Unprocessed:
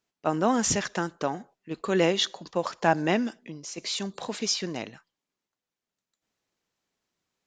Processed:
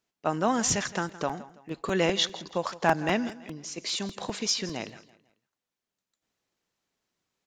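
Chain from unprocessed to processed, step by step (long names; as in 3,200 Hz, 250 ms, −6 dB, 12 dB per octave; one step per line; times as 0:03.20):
dynamic equaliser 340 Hz, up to −4 dB, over −33 dBFS, Q 0.93
on a send: repeating echo 165 ms, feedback 36%, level −17.5 dB
on the sum: regular buffer underruns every 0.20 s, samples 128, repeat, from 0:00.69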